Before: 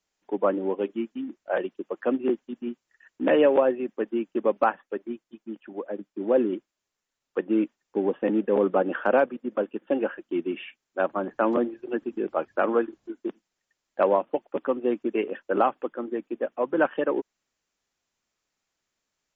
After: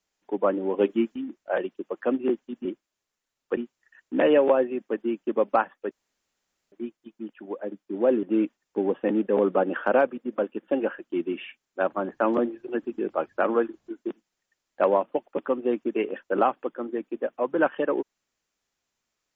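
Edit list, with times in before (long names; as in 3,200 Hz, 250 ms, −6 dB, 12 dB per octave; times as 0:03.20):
0:00.74–0:01.16: clip gain +6 dB
0:04.99: splice in room tone 0.81 s
0:06.50–0:07.42: move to 0:02.65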